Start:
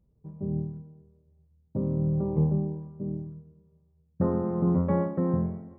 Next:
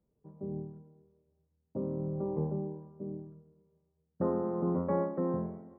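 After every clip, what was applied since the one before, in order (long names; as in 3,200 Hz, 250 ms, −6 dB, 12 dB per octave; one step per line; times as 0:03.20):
three-way crossover with the lows and the highs turned down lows −14 dB, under 230 Hz, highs −21 dB, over 2,000 Hz
level −1.5 dB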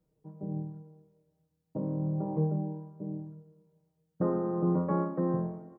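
comb filter 6.4 ms, depth 72%
level +1 dB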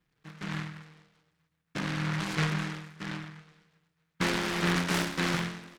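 short delay modulated by noise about 1,500 Hz, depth 0.43 ms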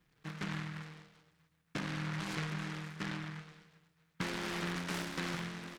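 downward compressor 6 to 1, threshold −40 dBFS, peak gain reduction 15.5 dB
level +3.5 dB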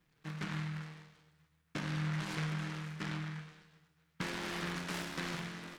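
tuned comb filter 76 Hz, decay 0.7 s, harmonics all, mix 70%
level +7 dB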